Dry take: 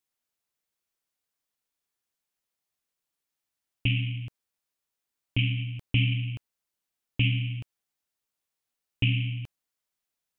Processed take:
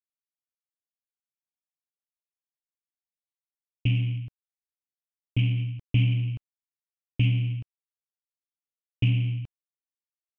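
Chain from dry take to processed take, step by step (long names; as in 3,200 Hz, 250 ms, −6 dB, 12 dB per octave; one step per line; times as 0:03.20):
downward expander −31 dBFS
low-shelf EQ 350 Hz +9 dB
in parallel at −12 dB: hard clipping −24.5 dBFS, distortion −6 dB
on the sum: high-frequency loss of the air 97 metres
level −5.5 dB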